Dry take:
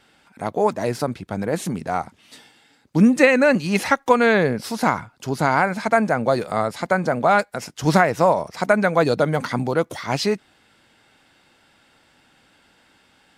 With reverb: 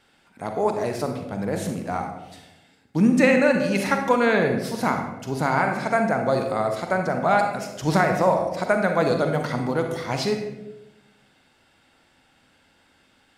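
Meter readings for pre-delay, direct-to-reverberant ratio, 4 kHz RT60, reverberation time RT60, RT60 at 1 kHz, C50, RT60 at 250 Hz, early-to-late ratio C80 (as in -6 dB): 38 ms, 4.0 dB, 0.60 s, 1.0 s, 0.80 s, 5.0 dB, 1.2 s, 8.0 dB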